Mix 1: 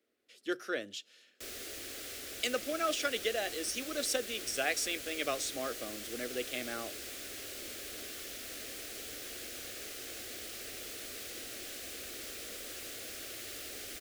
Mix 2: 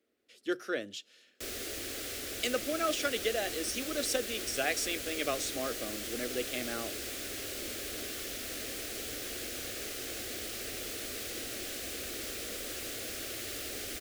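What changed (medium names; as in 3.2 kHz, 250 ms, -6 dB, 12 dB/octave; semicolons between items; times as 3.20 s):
background +4.0 dB; master: add bass shelf 430 Hz +4.5 dB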